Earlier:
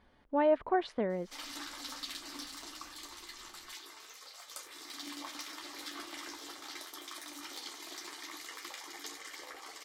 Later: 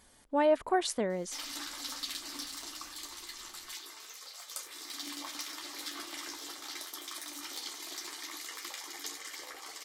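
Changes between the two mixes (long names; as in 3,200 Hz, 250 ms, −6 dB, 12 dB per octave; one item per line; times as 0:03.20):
speech: remove high-frequency loss of the air 350 metres
background: add high-shelf EQ 4,000 Hz +7 dB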